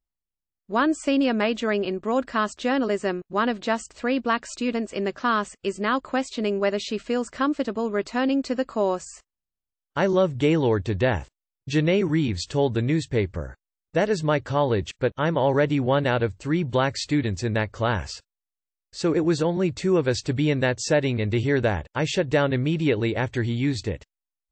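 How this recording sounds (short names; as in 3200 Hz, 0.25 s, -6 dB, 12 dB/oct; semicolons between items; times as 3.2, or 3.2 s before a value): noise floor -89 dBFS; spectral tilt -5.5 dB/oct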